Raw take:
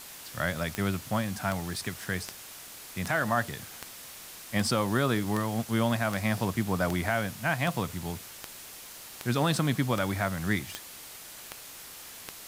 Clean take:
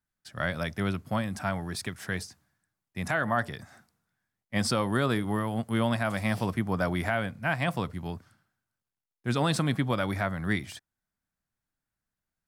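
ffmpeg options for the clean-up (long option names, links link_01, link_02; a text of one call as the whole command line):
ffmpeg -i in.wav -af "adeclick=threshold=4,afwtdn=0.0063" out.wav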